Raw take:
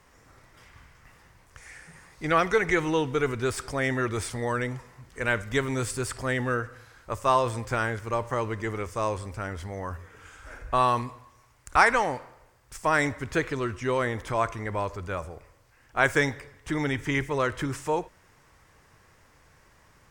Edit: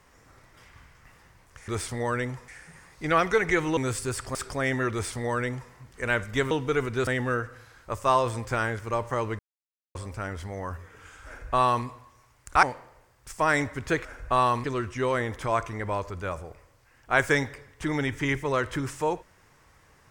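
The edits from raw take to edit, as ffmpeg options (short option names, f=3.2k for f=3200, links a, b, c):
-filter_complex "[0:a]asplit=12[a][b][c][d][e][f][g][h][i][j][k][l];[a]atrim=end=1.682[m];[b]atrim=start=4.098:end=4.902[n];[c]atrim=start=1.678:end=2.972[o];[d]atrim=start=5.688:end=6.272[p];[e]atrim=start=3.528:end=5.692[q];[f]atrim=start=2.968:end=3.532[r];[g]atrim=start=6.268:end=8.59,asetpts=PTS-STARTPTS,afade=t=out:st=2.318:d=0.004:c=hsin[s];[h]atrim=start=8.59:end=9.15,asetpts=PTS-STARTPTS,volume=0[t];[i]atrim=start=9.15:end=11.832,asetpts=PTS-STARTPTS,afade=t=in:d=0.004:c=hsin[u];[j]atrim=start=12.078:end=13.502[v];[k]atrim=start=10.468:end=11.062[w];[l]atrim=start=13.498[x];[m][n]acrossfade=d=0.004:c1=hsin:c2=hsin[y];[y][o]acrossfade=d=0.004:c1=hsin:c2=hsin[z];[z][p]acrossfade=d=0.004:c1=hsin:c2=hsin[aa];[aa][q]acrossfade=d=0.004:c1=hsin:c2=hsin[ab];[ab][r]acrossfade=d=0.004:c1=hsin:c2=hsin[ac];[s][t][u]concat=n=3:v=0:a=1[ad];[ac][ad]acrossfade=d=0.004:c1=hsin:c2=hsin[ae];[ae][v]acrossfade=d=0.004:c1=hsin:c2=hsin[af];[af][w]acrossfade=d=0.004:c1=hsin:c2=hsin[ag];[ag][x]acrossfade=d=0.004:c1=hsin:c2=hsin"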